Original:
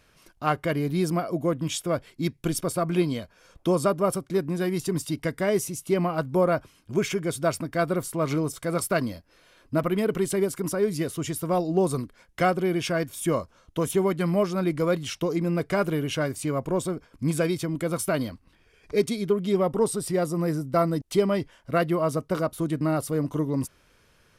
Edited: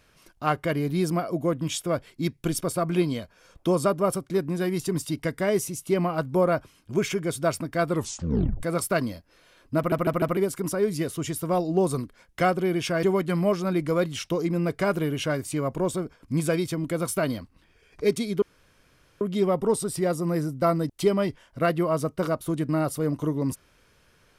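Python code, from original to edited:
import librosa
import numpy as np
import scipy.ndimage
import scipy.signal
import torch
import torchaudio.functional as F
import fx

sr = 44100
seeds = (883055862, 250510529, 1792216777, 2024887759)

y = fx.edit(x, sr, fx.tape_stop(start_s=7.89, length_s=0.74),
    fx.stutter_over(start_s=9.77, slice_s=0.15, count=4),
    fx.cut(start_s=13.03, length_s=0.91),
    fx.insert_room_tone(at_s=19.33, length_s=0.79), tone=tone)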